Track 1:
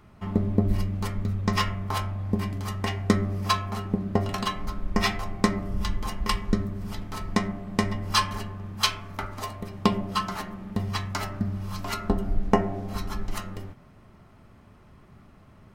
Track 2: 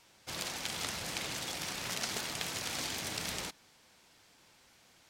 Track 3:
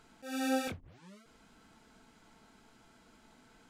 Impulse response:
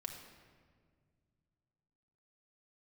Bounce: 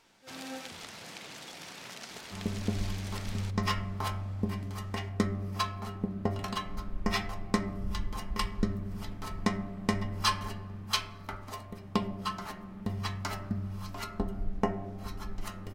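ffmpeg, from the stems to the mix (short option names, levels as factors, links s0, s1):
-filter_complex "[0:a]dynaudnorm=f=190:g=11:m=2.51,adelay=2100,volume=0.266,asplit=2[s0][s1];[s1]volume=0.224[s2];[1:a]highpass=120,highshelf=f=5900:g=-7,acompressor=threshold=0.00562:ratio=2,volume=0.75,asplit=2[s3][s4];[s4]volume=0.376[s5];[2:a]volume=0.282[s6];[3:a]atrim=start_sample=2205[s7];[s2][s5]amix=inputs=2:normalize=0[s8];[s8][s7]afir=irnorm=-1:irlink=0[s9];[s0][s3][s6][s9]amix=inputs=4:normalize=0"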